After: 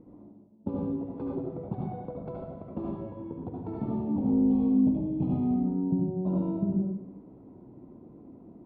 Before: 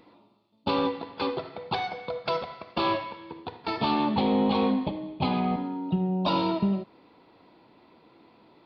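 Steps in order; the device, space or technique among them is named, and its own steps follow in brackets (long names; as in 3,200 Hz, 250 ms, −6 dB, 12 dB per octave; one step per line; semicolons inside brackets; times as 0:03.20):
0:04.49–0:05.54: flat-topped bell 3,500 Hz +8 dB 1.3 octaves
television next door (downward compressor 5 to 1, threshold −35 dBFS, peak gain reduction 14 dB; low-pass filter 300 Hz 12 dB per octave; convolution reverb RT60 0.65 s, pre-delay 65 ms, DRR −2 dB)
level +8.5 dB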